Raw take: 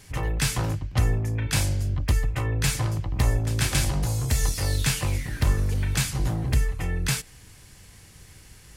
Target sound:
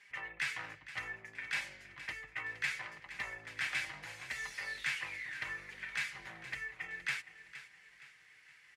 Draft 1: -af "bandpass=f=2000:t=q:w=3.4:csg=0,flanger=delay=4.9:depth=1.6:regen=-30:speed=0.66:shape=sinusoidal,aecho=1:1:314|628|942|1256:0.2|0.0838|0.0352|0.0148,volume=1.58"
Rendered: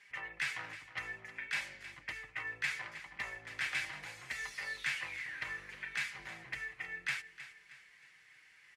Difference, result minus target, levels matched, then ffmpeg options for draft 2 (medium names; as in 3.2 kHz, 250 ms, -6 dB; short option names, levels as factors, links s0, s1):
echo 153 ms early
-af "bandpass=f=2000:t=q:w=3.4:csg=0,flanger=delay=4.9:depth=1.6:regen=-30:speed=0.66:shape=sinusoidal,aecho=1:1:467|934|1401|1868:0.2|0.0838|0.0352|0.0148,volume=1.58"